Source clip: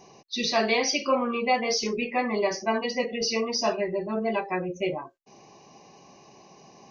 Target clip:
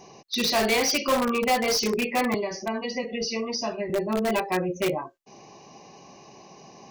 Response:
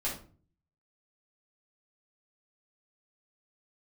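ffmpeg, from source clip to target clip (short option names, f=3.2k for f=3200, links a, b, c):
-filter_complex "[0:a]asettb=1/sr,asplit=3[a][b][c];[a]atrim=end=2.344[d];[b]atrim=start=2.34:end=3.9,asetpts=PTS-STARTPTS,afade=t=in:d=0.004:c=qsin,afade=t=out:st=1.556:d=0.004:c=qsin,acrossover=split=190[e][f];[f]acompressor=threshold=-31dB:ratio=6[g];[e][g]amix=inputs=2:normalize=0[h];[c]atrim=start=3.896[i];[d][h]acrossfade=d=0.004:c1=hsin:c2=qsin[j];[j][i]acrossfade=d=0.004:c1=qsin:c2=hsin,asplit=2[k][l];[l]aeval=exprs='(mod(10.6*val(0)+1,2)-1)/10.6':c=same,volume=-5.5dB[m];[k][m]amix=inputs=2:normalize=0"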